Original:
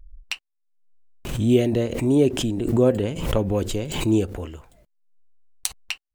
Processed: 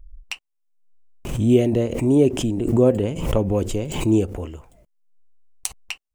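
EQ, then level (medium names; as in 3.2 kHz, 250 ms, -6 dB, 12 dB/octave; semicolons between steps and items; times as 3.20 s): fifteen-band graphic EQ 1.6 kHz -6 dB, 4 kHz -8 dB, 16 kHz -6 dB; +2.0 dB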